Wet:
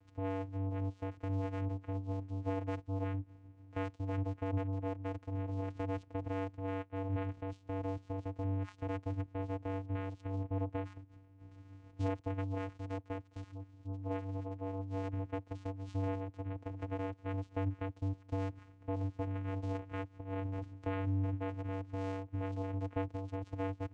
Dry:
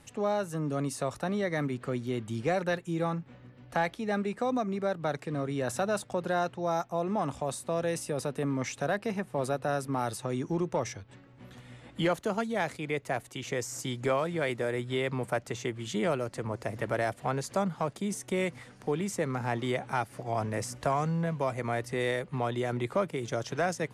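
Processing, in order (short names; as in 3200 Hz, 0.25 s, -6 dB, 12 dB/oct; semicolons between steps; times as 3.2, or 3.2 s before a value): 13.43–15.03 median-filter separation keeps harmonic; Chebyshev low-pass 4400 Hz, order 10; vocoder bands 4, square 96.3 Hz; gain -5.5 dB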